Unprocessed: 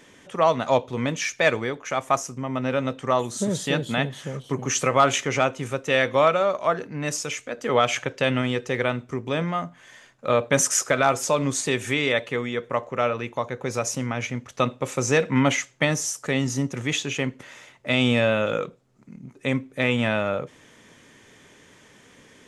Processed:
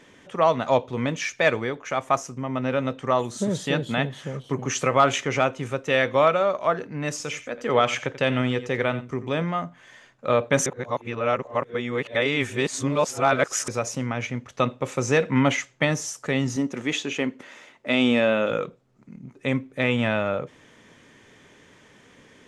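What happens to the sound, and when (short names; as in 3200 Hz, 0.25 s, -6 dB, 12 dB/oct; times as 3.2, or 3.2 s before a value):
7.11–9.28 echo 87 ms -14.5 dB
10.66–13.68 reverse
16.56–18.51 resonant low shelf 170 Hz -8.5 dB, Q 1.5
whole clip: high shelf 7000 Hz -10 dB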